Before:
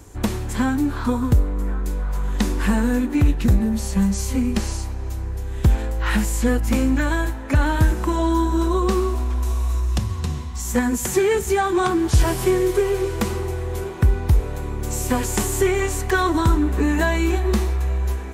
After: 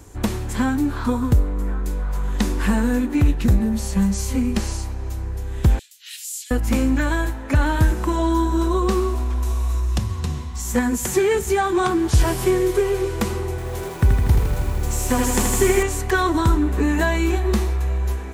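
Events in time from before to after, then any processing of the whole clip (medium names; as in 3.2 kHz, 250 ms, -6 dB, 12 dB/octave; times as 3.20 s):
5.79–6.51 s: inverse Chebyshev high-pass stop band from 730 Hz, stop band 70 dB
13.50–15.83 s: bit-crushed delay 80 ms, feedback 80%, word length 7-bit, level -5 dB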